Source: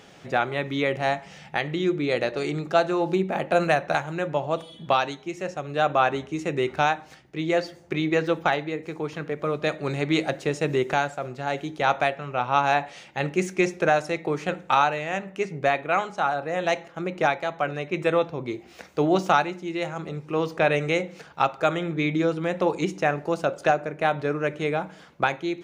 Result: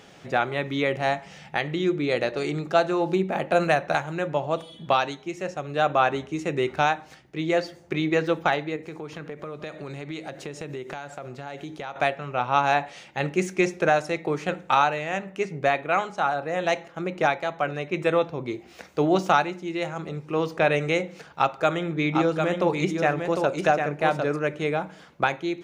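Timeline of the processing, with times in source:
8.76–11.96 s: compression 5:1, threshold -32 dBFS
21.30–24.39 s: delay 752 ms -5 dB

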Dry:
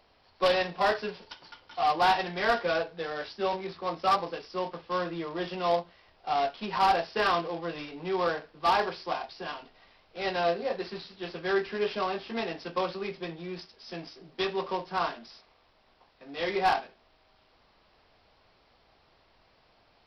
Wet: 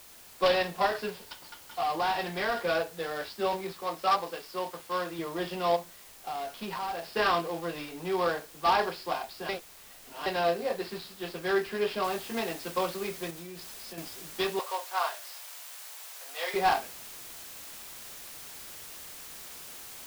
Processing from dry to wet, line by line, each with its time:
0.86–2.67 s: compression, threshold -25 dBFS
3.72–5.19 s: bass shelf 300 Hz -8 dB
5.76–7.09 s: compression, threshold -32 dBFS
9.49–10.26 s: reverse
12.04 s: noise floor step -52 dB -45 dB
13.30–13.98 s: compression, threshold -39 dBFS
14.59–16.54 s: high-pass 560 Hz 24 dB/octave

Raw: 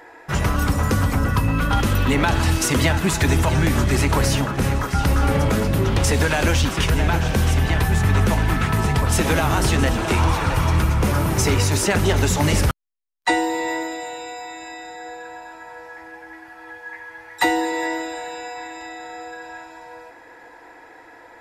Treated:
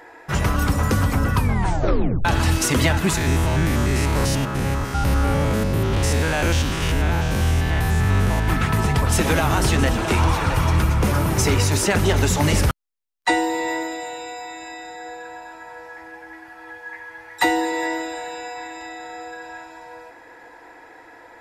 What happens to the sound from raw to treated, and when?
1.36 s: tape stop 0.89 s
3.17–8.48 s: spectrogram pixelated in time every 100 ms

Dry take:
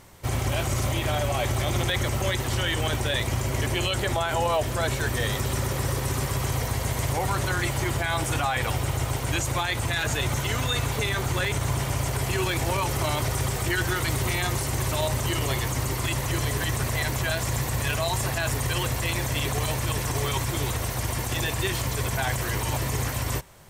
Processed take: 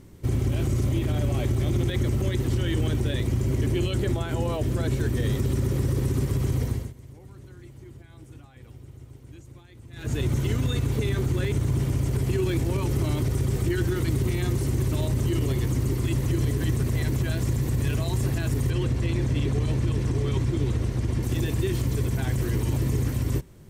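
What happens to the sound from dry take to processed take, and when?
6.62–10.22 s: dip -22 dB, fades 0.31 s
18.70–21.23 s: distance through air 61 m
whole clip: resonant low shelf 490 Hz +12.5 dB, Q 1.5; peak limiter -8.5 dBFS; trim -8 dB

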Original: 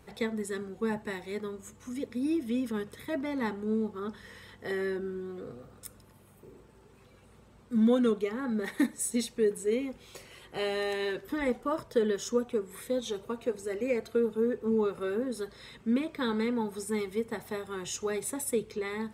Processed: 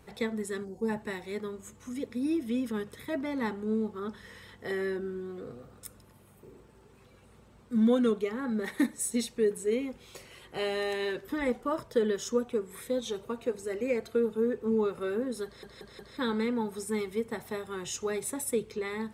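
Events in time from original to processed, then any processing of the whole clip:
0.64–0.89 s: time-frequency box 1–4.2 kHz -15 dB
15.45 s: stutter in place 0.18 s, 4 plays

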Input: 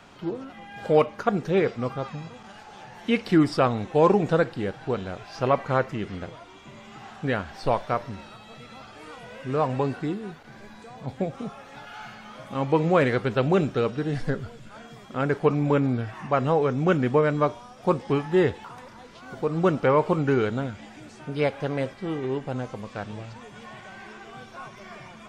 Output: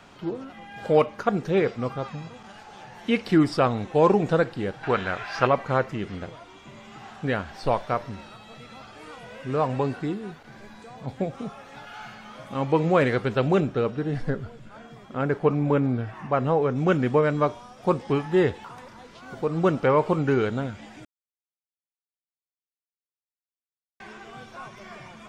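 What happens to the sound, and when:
4.83–5.47 s: peaking EQ 1.7 kHz +14 dB 1.9 oct
13.60–16.76 s: treble shelf 2.9 kHz -8 dB
21.05–24.00 s: mute

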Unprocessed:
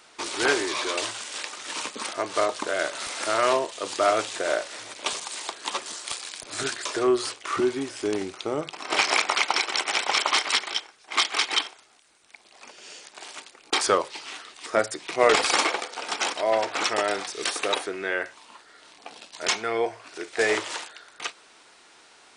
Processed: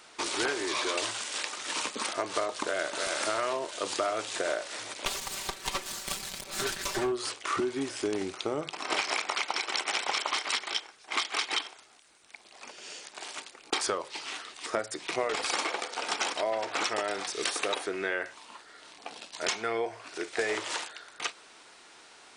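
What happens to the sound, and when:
2.62–3.09 s: echo throw 310 ms, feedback 45%, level -7.5 dB
5.05–7.12 s: comb filter that takes the minimum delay 5.2 ms
whole clip: compression 12:1, threshold -26 dBFS

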